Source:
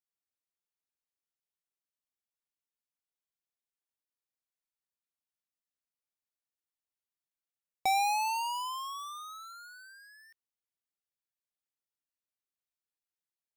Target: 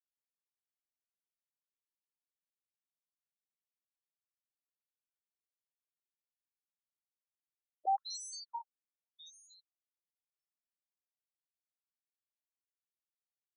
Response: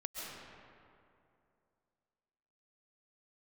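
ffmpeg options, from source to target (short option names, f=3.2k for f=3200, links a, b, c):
-filter_complex "[0:a]lowshelf=f=460:g=-11.5,afftfilt=real='re*(1-between(b*sr/4096,940,3400))':imag='im*(1-between(b*sr/4096,940,3400))':win_size=4096:overlap=0.75,equalizer=f=160:t=o:w=0.33:g=11,equalizer=f=1k:t=o:w=0.33:g=9,equalizer=f=16k:t=o:w=0.33:g=-11,agate=range=-33dB:threshold=-52dB:ratio=3:detection=peak,asplit=2[a][b];[b]adelay=126,lowpass=f=4.8k:p=1,volume=-6dB,asplit=2[c][d];[d]adelay=126,lowpass=f=4.8k:p=1,volume=0.16,asplit=2[e][f];[f]adelay=126,lowpass=f=4.8k:p=1,volume=0.16[g];[c][e][g]amix=inputs=3:normalize=0[h];[a][h]amix=inputs=2:normalize=0,afftfilt=real='re*between(b*sr/1024,230*pow(7200/230,0.5+0.5*sin(2*PI*0.87*pts/sr))/1.41,230*pow(7200/230,0.5+0.5*sin(2*PI*0.87*pts/sr))*1.41)':imag='im*between(b*sr/1024,230*pow(7200/230,0.5+0.5*sin(2*PI*0.87*pts/sr))/1.41,230*pow(7200/230,0.5+0.5*sin(2*PI*0.87*pts/sr))*1.41)':win_size=1024:overlap=0.75"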